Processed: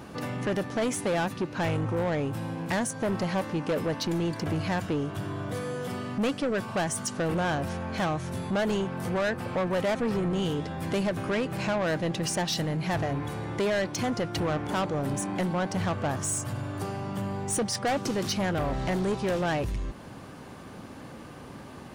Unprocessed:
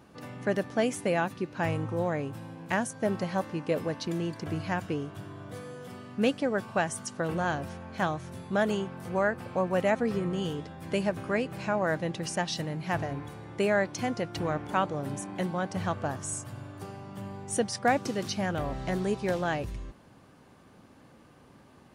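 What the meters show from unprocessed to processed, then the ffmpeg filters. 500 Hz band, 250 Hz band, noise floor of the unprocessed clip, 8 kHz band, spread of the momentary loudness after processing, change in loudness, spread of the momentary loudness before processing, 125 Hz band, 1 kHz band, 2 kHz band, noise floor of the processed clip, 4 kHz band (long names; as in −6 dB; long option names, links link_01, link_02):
+1.0 dB, +2.5 dB, −56 dBFS, +5.0 dB, 7 LU, +1.5 dB, 13 LU, +4.0 dB, +0.5 dB, 0.0 dB, −44 dBFS, +4.5 dB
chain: -filter_complex "[0:a]asplit=2[link_01][link_02];[link_02]acompressor=threshold=-43dB:ratio=6,volume=3dB[link_03];[link_01][link_03]amix=inputs=2:normalize=0,asoftclip=type=tanh:threshold=-27.5dB,volume=4.5dB"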